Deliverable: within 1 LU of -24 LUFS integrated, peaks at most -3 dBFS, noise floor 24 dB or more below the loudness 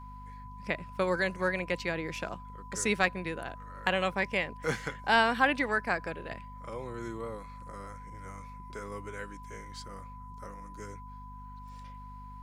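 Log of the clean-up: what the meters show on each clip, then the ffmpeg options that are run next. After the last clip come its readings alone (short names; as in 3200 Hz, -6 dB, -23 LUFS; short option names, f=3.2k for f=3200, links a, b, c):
hum 50 Hz; harmonics up to 250 Hz; hum level -45 dBFS; steady tone 1000 Hz; tone level -47 dBFS; loudness -31.5 LUFS; peak -10.0 dBFS; loudness target -24.0 LUFS
-> -af "bandreject=f=50:t=h:w=4,bandreject=f=100:t=h:w=4,bandreject=f=150:t=h:w=4,bandreject=f=200:t=h:w=4,bandreject=f=250:t=h:w=4"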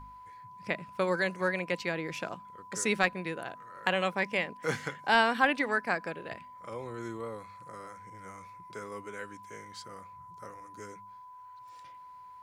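hum none; steady tone 1000 Hz; tone level -47 dBFS
-> -af "bandreject=f=1k:w=30"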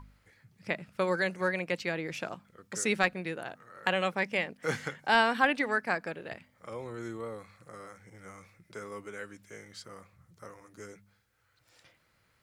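steady tone none; loudness -31.5 LUFS; peak -9.5 dBFS; loudness target -24.0 LUFS
-> -af "volume=7.5dB,alimiter=limit=-3dB:level=0:latency=1"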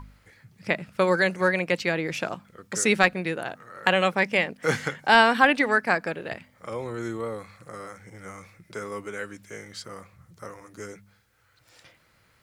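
loudness -24.0 LUFS; peak -3.0 dBFS; noise floor -63 dBFS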